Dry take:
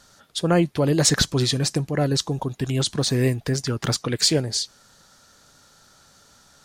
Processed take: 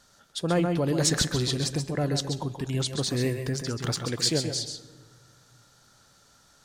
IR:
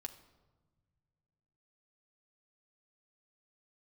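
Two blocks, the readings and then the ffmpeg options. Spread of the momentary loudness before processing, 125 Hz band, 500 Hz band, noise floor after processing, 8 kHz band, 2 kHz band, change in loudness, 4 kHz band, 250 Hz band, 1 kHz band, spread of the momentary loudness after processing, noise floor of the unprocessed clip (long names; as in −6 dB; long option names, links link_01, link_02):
8 LU, −5.5 dB, −5.0 dB, −60 dBFS, −5.0 dB, −5.0 dB, −5.0 dB, −5.0 dB, −5.0 dB, −5.0 dB, 8 LU, −55 dBFS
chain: -filter_complex "[0:a]asplit=2[link_01][link_02];[1:a]atrim=start_sample=2205,asetrate=32193,aresample=44100,adelay=131[link_03];[link_02][link_03]afir=irnorm=-1:irlink=0,volume=-4.5dB[link_04];[link_01][link_04]amix=inputs=2:normalize=0,volume=-6dB"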